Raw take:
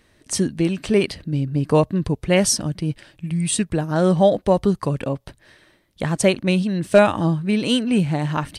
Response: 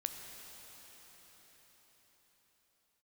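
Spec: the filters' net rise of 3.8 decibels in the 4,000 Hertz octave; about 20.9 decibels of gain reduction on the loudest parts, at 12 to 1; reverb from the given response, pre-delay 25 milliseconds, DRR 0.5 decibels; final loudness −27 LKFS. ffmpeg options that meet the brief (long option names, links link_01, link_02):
-filter_complex "[0:a]equalizer=frequency=4000:width_type=o:gain=5.5,acompressor=threshold=-29dB:ratio=12,asplit=2[link_01][link_02];[1:a]atrim=start_sample=2205,adelay=25[link_03];[link_02][link_03]afir=irnorm=-1:irlink=0,volume=-0.5dB[link_04];[link_01][link_04]amix=inputs=2:normalize=0,volume=4dB"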